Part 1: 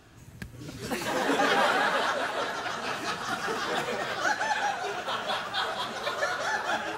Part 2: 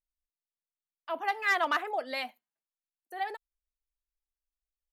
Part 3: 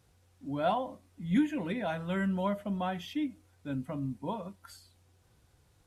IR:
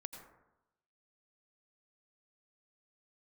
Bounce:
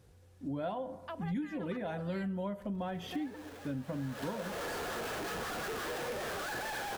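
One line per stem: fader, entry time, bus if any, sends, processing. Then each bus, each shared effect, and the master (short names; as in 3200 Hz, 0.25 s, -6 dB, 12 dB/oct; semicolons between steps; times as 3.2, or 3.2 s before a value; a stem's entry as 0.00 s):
3.87 s -22 dB -> 4.27 s -9 dB, 2.20 s, no send, Schmitt trigger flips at -37.5 dBFS
-2.5 dB, 0.00 s, no send, compressor, threshold -38 dBFS, peak gain reduction 14.5 dB
-1.5 dB, 0.00 s, send -9.5 dB, low shelf 360 Hz +6 dB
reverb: on, RT60 0.95 s, pre-delay 78 ms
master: bell 380 Hz +3.5 dB 0.43 oct; small resonant body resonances 500/1700 Hz, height 6 dB, ringing for 25 ms; compressor 5:1, threshold -35 dBFS, peak gain reduction 16 dB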